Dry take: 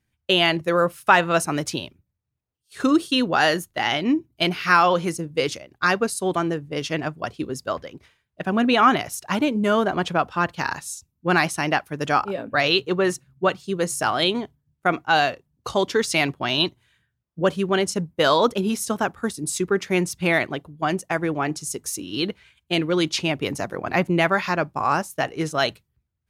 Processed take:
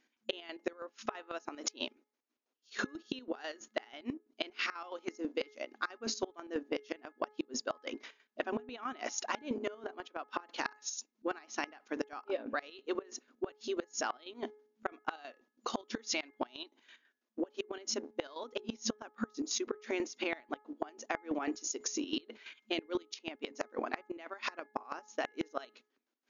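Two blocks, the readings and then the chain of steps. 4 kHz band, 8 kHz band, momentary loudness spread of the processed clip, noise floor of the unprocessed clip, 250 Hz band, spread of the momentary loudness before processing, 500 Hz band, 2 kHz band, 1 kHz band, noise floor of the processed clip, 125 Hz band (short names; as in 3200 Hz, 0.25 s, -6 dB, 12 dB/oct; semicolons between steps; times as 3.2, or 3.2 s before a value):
-17.0 dB, -10.0 dB, 8 LU, -77 dBFS, -16.5 dB, 10 LU, -16.5 dB, -18.5 dB, -19.5 dB, under -85 dBFS, -29.5 dB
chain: octaver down 2 oct, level -5 dB; FFT band-pass 220–7000 Hz; chopper 6.1 Hz, depth 65%, duty 45%; flipped gate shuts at -17 dBFS, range -27 dB; compressor 6:1, threshold -39 dBFS, peak gain reduction 16 dB; de-hum 423.2 Hz, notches 5; gain +6 dB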